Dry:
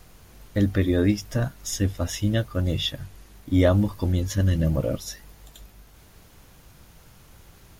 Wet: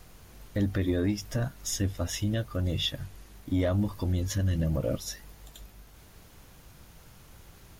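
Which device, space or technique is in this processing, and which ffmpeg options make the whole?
soft clipper into limiter: -af "asoftclip=type=tanh:threshold=-10dB,alimiter=limit=-17.5dB:level=0:latency=1:release=145,volume=-1.5dB"

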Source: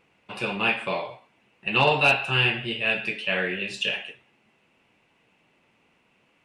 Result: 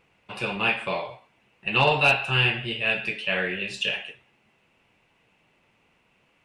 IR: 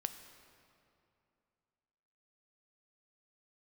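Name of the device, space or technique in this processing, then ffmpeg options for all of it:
low shelf boost with a cut just above: -af "lowshelf=frequency=95:gain=7,equalizer=frequency=260:width_type=o:width=1.1:gain=-3.5"

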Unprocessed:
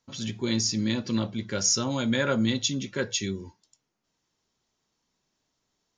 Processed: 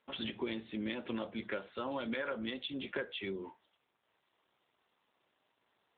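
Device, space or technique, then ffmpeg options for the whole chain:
voicemail: -af "highpass=420,lowpass=3300,acompressor=threshold=-40dB:ratio=12,volume=7dB" -ar 8000 -c:a libopencore_amrnb -b:a 7950

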